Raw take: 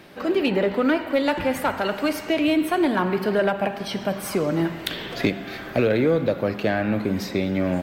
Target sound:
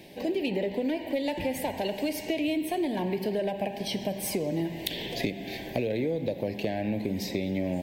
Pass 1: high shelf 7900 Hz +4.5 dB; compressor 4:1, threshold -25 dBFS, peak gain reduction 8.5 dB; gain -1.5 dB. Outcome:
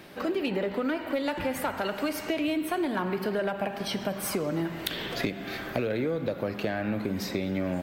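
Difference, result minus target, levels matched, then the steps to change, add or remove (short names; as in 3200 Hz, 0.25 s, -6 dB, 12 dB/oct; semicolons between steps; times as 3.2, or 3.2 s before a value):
1000 Hz band +2.5 dB
add first: Butterworth band-stop 1300 Hz, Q 1.2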